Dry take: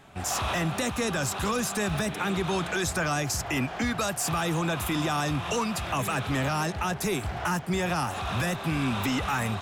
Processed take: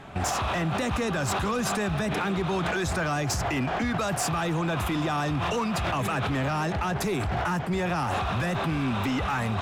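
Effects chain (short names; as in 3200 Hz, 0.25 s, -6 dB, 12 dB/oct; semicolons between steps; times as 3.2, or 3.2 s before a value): LPF 2700 Hz 6 dB/oct; in parallel at -1 dB: negative-ratio compressor -35 dBFS, ratio -0.5; on the sum: hard clip -21.5 dBFS, distortion -21 dB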